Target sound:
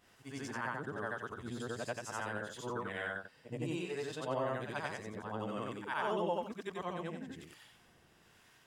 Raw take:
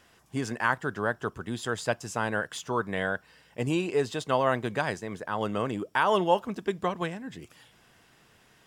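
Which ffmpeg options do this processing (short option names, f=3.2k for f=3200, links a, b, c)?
-filter_complex "[0:a]afftfilt=real='re':imag='-im':win_size=8192:overlap=0.75,asplit=2[a][b];[b]acompressor=threshold=-43dB:ratio=12,volume=3dB[c];[a][c]amix=inputs=2:normalize=0,acrossover=split=720[d][e];[d]aeval=exprs='val(0)*(1-0.5/2+0.5/2*cos(2*PI*1.1*n/s))':c=same[f];[e]aeval=exprs='val(0)*(1-0.5/2-0.5/2*cos(2*PI*1.1*n/s))':c=same[g];[f][g]amix=inputs=2:normalize=0,volume=-5.5dB"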